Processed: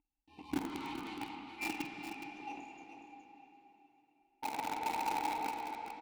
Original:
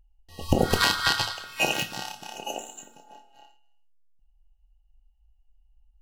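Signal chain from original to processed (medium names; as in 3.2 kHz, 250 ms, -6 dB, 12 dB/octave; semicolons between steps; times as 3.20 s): reverb removal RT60 1.8 s; painted sound noise, 4.42–5.48 s, 460–1000 Hz -29 dBFS; valve stage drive 33 dB, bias 0.45; pitch shift -1 st; vowel filter u; in parallel at -3 dB: bit crusher 7-bit; on the sum: multi-tap echo 48/418 ms -12/-8.5 dB; on a send at -3.5 dB: reverberation RT60 3.5 s, pre-delay 54 ms; on the sum: trim +7 dB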